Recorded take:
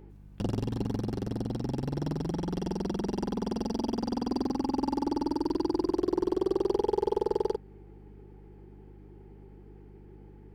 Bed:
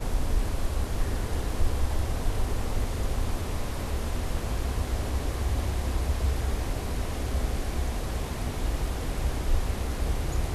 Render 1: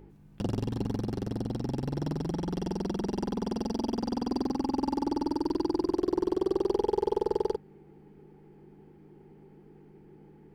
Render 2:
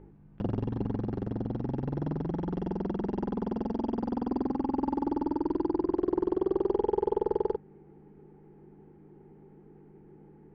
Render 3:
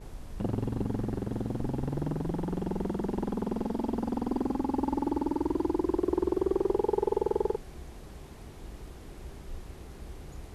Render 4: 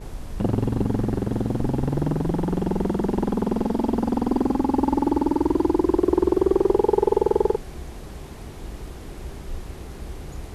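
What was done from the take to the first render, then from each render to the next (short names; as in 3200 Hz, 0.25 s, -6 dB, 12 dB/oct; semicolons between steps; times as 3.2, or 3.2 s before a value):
de-hum 50 Hz, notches 2
LPF 1800 Hz 12 dB/oct
add bed -16 dB
gain +8.5 dB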